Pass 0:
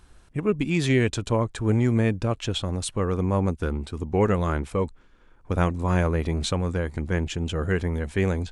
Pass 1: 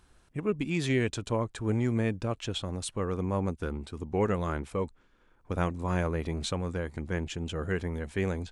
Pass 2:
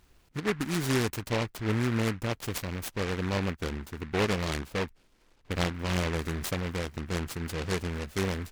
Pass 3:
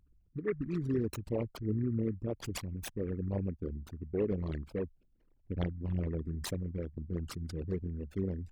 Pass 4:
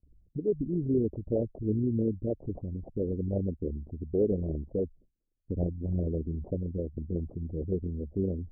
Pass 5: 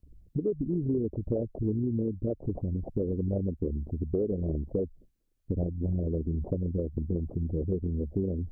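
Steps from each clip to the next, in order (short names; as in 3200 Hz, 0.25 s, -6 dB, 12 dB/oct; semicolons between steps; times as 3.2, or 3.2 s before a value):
low shelf 84 Hz -5.5 dB; gain -5.5 dB
noise-modulated delay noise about 1500 Hz, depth 0.19 ms
formant sharpening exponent 3; gain -4.5 dB
gate with hold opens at -59 dBFS; steep low-pass 670 Hz 48 dB/oct; dynamic EQ 120 Hz, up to -4 dB, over -44 dBFS, Q 0.82; gain +6.5 dB
compressor, threshold -33 dBFS, peak gain reduction 11 dB; gain +7 dB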